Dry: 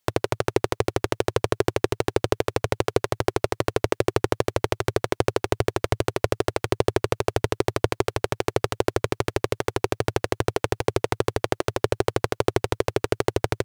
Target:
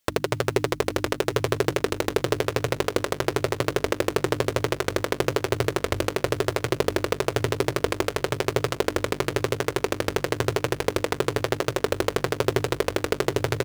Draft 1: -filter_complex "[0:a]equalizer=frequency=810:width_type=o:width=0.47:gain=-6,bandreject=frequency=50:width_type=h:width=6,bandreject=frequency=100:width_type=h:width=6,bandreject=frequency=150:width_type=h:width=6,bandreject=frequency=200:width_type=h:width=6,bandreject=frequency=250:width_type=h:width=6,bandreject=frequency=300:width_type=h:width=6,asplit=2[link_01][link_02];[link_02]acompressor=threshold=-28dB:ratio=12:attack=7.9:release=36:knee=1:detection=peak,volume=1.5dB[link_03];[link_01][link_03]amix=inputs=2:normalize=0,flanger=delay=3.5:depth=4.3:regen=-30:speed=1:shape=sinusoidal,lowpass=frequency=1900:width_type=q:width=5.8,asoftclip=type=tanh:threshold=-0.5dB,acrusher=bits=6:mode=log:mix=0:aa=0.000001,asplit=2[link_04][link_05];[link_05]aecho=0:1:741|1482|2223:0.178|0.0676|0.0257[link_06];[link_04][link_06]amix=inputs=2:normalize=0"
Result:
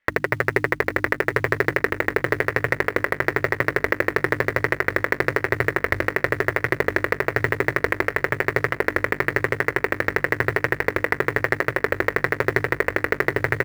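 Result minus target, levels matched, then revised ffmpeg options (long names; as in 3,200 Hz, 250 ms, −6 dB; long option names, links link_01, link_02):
2,000 Hz band +7.5 dB
-filter_complex "[0:a]equalizer=frequency=810:width_type=o:width=0.47:gain=-6,bandreject=frequency=50:width_type=h:width=6,bandreject=frequency=100:width_type=h:width=6,bandreject=frequency=150:width_type=h:width=6,bandreject=frequency=200:width_type=h:width=6,bandreject=frequency=250:width_type=h:width=6,bandreject=frequency=300:width_type=h:width=6,asplit=2[link_01][link_02];[link_02]acompressor=threshold=-28dB:ratio=12:attack=7.9:release=36:knee=1:detection=peak,volume=1.5dB[link_03];[link_01][link_03]amix=inputs=2:normalize=0,flanger=delay=3.5:depth=4.3:regen=-30:speed=1:shape=sinusoidal,asoftclip=type=tanh:threshold=-0.5dB,acrusher=bits=6:mode=log:mix=0:aa=0.000001,asplit=2[link_04][link_05];[link_05]aecho=0:1:741|1482|2223:0.178|0.0676|0.0257[link_06];[link_04][link_06]amix=inputs=2:normalize=0"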